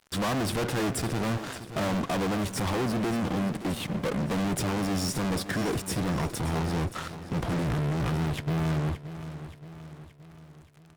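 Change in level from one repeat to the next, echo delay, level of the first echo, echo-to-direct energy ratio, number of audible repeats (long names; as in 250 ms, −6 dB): −5.5 dB, 574 ms, −13.0 dB, −11.5 dB, 4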